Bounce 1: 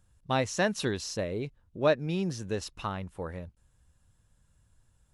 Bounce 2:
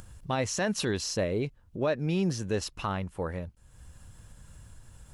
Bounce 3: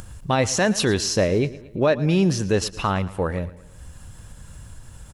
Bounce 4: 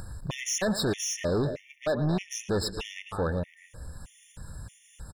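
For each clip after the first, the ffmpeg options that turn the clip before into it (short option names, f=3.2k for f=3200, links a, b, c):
-af "alimiter=limit=-23dB:level=0:latency=1:release=38,bandreject=f=3.7k:w=21,acompressor=mode=upward:threshold=-41dB:ratio=2.5,volume=4dB"
-af "aecho=1:1:113|226|339|452:0.126|0.0629|0.0315|0.0157,volume=9dB"
-filter_complex "[0:a]asplit=2[a][b];[b]adelay=270,highpass=300,lowpass=3.4k,asoftclip=type=hard:threshold=-18dB,volume=-12dB[c];[a][c]amix=inputs=2:normalize=0,asoftclip=type=tanh:threshold=-22.5dB,afftfilt=real='re*gt(sin(2*PI*1.6*pts/sr)*(1-2*mod(floor(b*sr/1024/1800),2)),0)':imag='im*gt(sin(2*PI*1.6*pts/sr)*(1-2*mod(floor(b*sr/1024/1800),2)),0)':win_size=1024:overlap=0.75"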